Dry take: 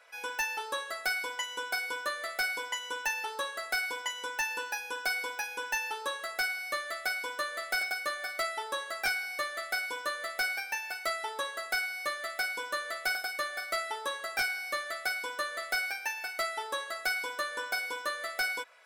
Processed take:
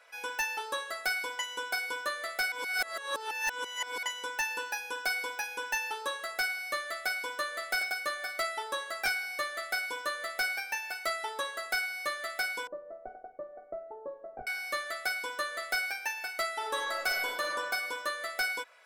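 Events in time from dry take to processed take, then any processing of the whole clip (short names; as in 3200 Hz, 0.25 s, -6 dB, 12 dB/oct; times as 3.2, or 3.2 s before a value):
2.52–4.03 reverse
12.67–14.47 Chebyshev low-pass 650 Hz, order 3
16.56–17.47 reverb throw, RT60 1.5 s, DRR 0.5 dB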